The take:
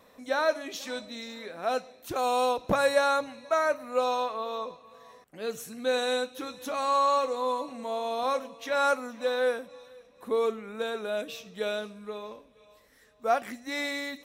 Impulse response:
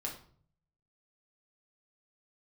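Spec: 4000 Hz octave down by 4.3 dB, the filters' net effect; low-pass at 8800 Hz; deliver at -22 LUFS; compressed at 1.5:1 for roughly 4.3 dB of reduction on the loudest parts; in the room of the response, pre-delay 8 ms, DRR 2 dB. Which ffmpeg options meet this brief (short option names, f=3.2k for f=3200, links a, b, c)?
-filter_complex "[0:a]lowpass=8.8k,equalizer=f=4k:t=o:g=-4.5,acompressor=threshold=-31dB:ratio=1.5,asplit=2[a][b];[1:a]atrim=start_sample=2205,adelay=8[c];[b][c]afir=irnorm=-1:irlink=0,volume=-2.5dB[d];[a][d]amix=inputs=2:normalize=0,volume=8dB"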